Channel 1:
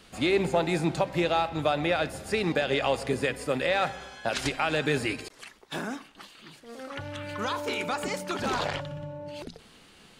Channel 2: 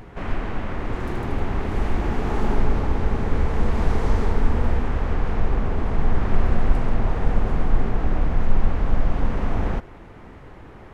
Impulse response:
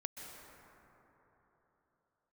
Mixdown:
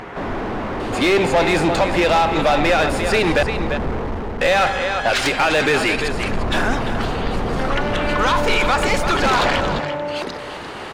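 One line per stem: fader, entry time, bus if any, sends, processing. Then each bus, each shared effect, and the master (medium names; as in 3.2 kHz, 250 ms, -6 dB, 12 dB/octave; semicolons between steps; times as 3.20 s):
-1.0 dB, 0.80 s, muted 3.43–4.41 s, no send, echo send -12.5 dB, none
3.92 s -4 dB -> 4.64 s -12 dB -> 5.70 s -12 dB -> 6.38 s -3 dB, 0.00 s, no send, no echo send, slew-rate limiter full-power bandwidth 9.7 Hz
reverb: none
echo: delay 345 ms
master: overdrive pedal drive 27 dB, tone 3 kHz, clips at -6.5 dBFS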